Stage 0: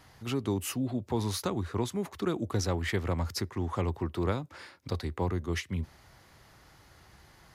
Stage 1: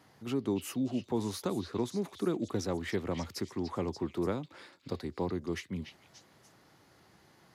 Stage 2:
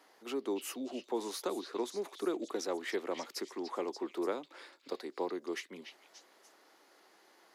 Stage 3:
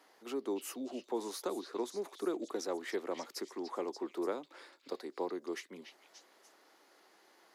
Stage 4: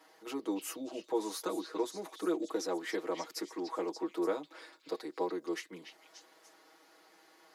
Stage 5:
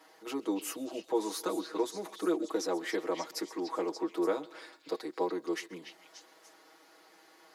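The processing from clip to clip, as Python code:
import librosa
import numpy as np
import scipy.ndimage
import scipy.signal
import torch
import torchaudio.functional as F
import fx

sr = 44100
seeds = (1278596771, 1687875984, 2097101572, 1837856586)

y1 = scipy.signal.sosfilt(scipy.signal.butter(2, 220.0, 'highpass', fs=sr, output='sos'), x)
y1 = fx.low_shelf(y1, sr, hz=450.0, db=11.5)
y1 = fx.echo_stepped(y1, sr, ms=291, hz=3400.0, octaves=0.7, feedback_pct=70, wet_db=-4.5)
y1 = F.gain(torch.from_numpy(y1), -6.5).numpy()
y2 = scipy.signal.sosfilt(scipy.signal.butter(4, 330.0, 'highpass', fs=sr, output='sos'), y1)
y3 = fx.dynamic_eq(y2, sr, hz=2800.0, q=1.1, threshold_db=-56.0, ratio=4.0, max_db=-4)
y3 = F.gain(torch.from_numpy(y3), -1.0).numpy()
y4 = y3 + 0.93 * np.pad(y3, (int(6.3 * sr / 1000.0), 0))[:len(y3)]
y5 = fx.echo_feedback(y4, sr, ms=132, feedback_pct=50, wet_db=-22.5)
y5 = F.gain(torch.from_numpy(y5), 2.5).numpy()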